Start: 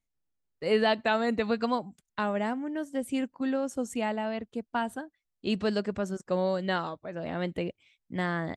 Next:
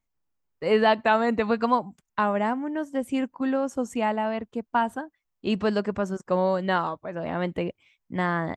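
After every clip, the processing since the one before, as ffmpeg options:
-af "equalizer=f=1k:t=o:w=0.67:g=6,equalizer=f=4k:t=o:w=0.67:g=-5,equalizer=f=10k:t=o:w=0.67:g=-8,volume=3.5dB"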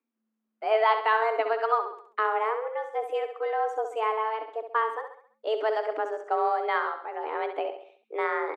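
-af "afreqshift=220,bass=f=250:g=-4,treble=f=4k:g=-14,aecho=1:1:67|134|201|268|335:0.376|0.169|0.0761|0.0342|0.0154,volume=-2.5dB"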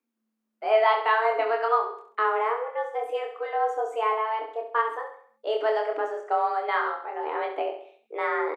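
-filter_complex "[0:a]asplit=2[a][b];[b]adelay=26,volume=-3.5dB[c];[a][c]amix=inputs=2:normalize=0"

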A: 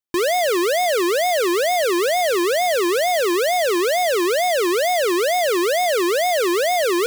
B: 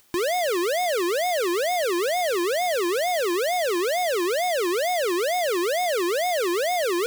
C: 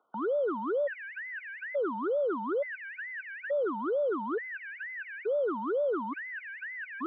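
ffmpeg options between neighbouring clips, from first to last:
-af "acompressor=mode=upward:threshold=-26dB:ratio=2.5,volume=-5dB"
-af "highpass=f=510:t=q:w=0.5412,highpass=f=510:t=q:w=1.307,lowpass=f=2.1k:t=q:w=0.5176,lowpass=f=2.1k:t=q:w=0.7071,lowpass=f=2.1k:t=q:w=1.932,afreqshift=-140,afftfilt=real='re*gt(sin(2*PI*0.57*pts/sr)*(1-2*mod(floor(b*sr/1024/1500),2)),0)':imag='im*gt(sin(2*PI*0.57*pts/sr)*(1-2*mod(floor(b*sr/1024/1500),2)),0)':win_size=1024:overlap=0.75,volume=-3dB"

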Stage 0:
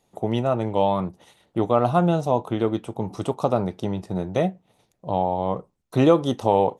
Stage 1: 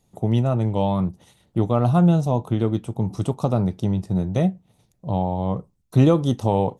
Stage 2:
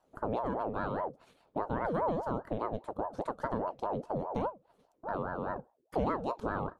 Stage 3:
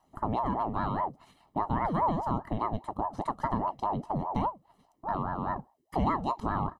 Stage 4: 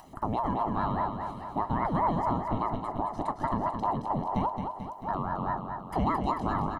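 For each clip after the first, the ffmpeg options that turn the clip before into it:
-af "bass=f=250:g=13,treble=f=4k:g=6,volume=-4dB"
-af "bass=f=250:g=0,treble=f=4k:g=-10,acompressor=threshold=-30dB:ratio=2,aeval=exprs='val(0)*sin(2*PI*570*n/s+570*0.45/4.9*sin(2*PI*4.9*n/s))':c=same,volume=-3.5dB"
-af "aecho=1:1:1:0.74,volume=2.5dB"
-filter_complex "[0:a]acompressor=mode=upward:threshold=-39dB:ratio=2.5,asplit=2[a][b];[b]aecho=0:1:220|440|660|880|1100|1320|1540|1760:0.501|0.291|0.169|0.0978|0.0567|0.0329|0.0191|0.0111[c];[a][c]amix=inputs=2:normalize=0"

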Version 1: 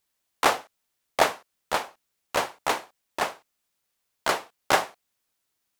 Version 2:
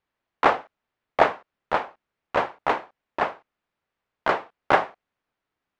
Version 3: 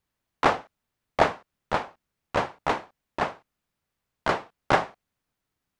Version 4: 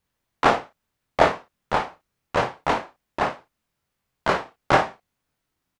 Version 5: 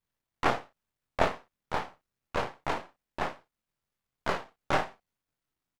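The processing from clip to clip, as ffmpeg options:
-af "lowpass=2k,volume=3.5dB"
-af "bass=f=250:g=10,treble=f=4k:g=11,volume=-3dB"
-af "aecho=1:1:23|55:0.596|0.335,volume=2dB"
-af "aeval=exprs='if(lt(val(0),0),0.251*val(0),val(0))':c=same,volume=-6dB"

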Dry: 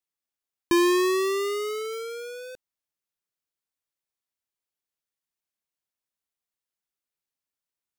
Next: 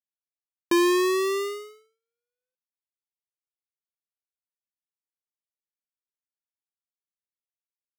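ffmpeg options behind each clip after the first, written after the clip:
-af "agate=range=-56dB:threshold=-29dB:ratio=16:detection=peak"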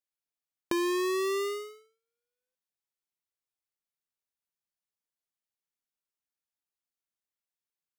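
-af "acompressor=threshold=-29dB:ratio=6"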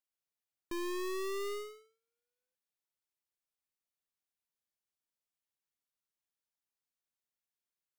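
-af "aeval=exprs='(tanh(70.8*val(0)+0.55)-tanh(0.55))/70.8':c=same"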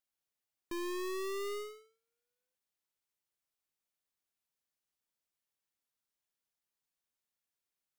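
-af "asoftclip=type=tanh:threshold=-34.5dB,volume=1.5dB"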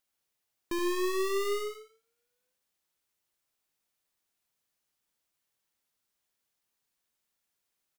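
-af "aecho=1:1:74:0.398,volume=7dB"

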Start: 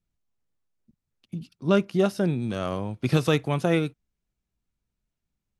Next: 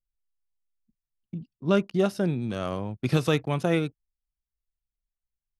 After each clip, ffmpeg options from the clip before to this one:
-af "anlmdn=0.0631,volume=-1.5dB"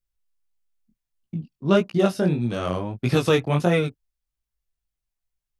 -af "flanger=delay=16.5:depth=6.9:speed=1.6,volume=7.5dB"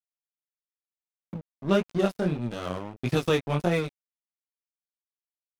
-af "acompressor=mode=upward:threshold=-25dB:ratio=2.5,aeval=exprs='sgn(val(0))*max(abs(val(0))-0.0266,0)':c=same,volume=-3.5dB"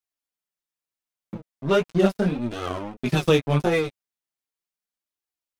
-af "flanger=delay=2.3:depth=7.3:regen=-2:speed=0.38:shape=triangular,volume=7dB"

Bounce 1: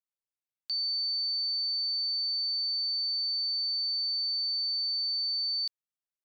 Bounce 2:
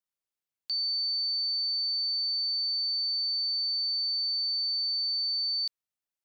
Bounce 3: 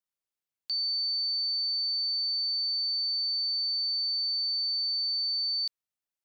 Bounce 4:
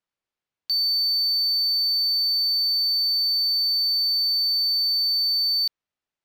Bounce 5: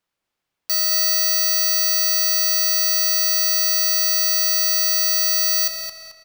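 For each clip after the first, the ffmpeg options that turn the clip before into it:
-af "acontrast=53,volume=-5dB"
-af anull
-af "aeval=exprs='0.0473*(cos(1*acos(clip(val(0)/0.0473,-1,1)))-cos(1*PI/2))+0.000944*(cos(2*acos(clip(val(0)/0.0473,-1,1)))-cos(2*PI/2))':c=same,adynamicsmooth=sensitivity=7:basefreq=4.5k,volume=8dB"
-filter_complex "[0:a]aeval=exprs='(mod(15*val(0)+1,2)-1)/15':c=same,asplit=2[a][b];[b]adelay=219,lowpass=f=4.8k:p=1,volume=-5dB,asplit=2[c][d];[d]adelay=219,lowpass=f=4.8k:p=1,volume=0.45,asplit=2[e][f];[f]adelay=219,lowpass=f=4.8k:p=1,volume=0.45,asplit=2[g][h];[h]adelay=219,lowpass=f=4.8k:p=1,volume=0.45,asplit=2[i][j];[j]adelay=219,lowpass=f=4.8k:p=1,volume=0.45,asplit=2[k][l];[l]adelay=219,lowpass=f=4.8k:p=1,volume=0.45[m];[a][c][e][g][i][k][m]amix=inputs=7:normalize=0,volume=8dB"

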